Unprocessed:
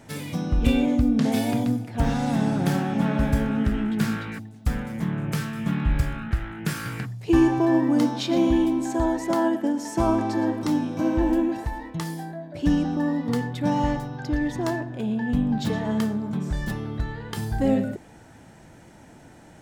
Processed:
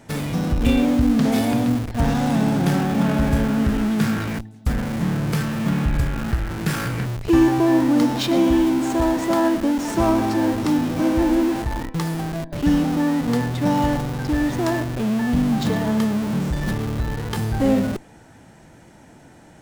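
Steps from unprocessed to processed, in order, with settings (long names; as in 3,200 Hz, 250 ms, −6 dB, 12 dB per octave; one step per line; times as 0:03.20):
mains-hum notches 50/100 Hz
in parallel at −6.5 dB: comparator with hysteresis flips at −33 dBFS
on the sum: level +1.5 dB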